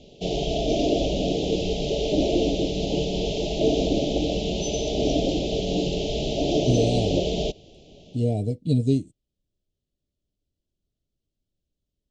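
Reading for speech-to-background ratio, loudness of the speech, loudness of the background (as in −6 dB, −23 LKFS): −0.5 dB, −25.5 LKFS, −25.0 LKFS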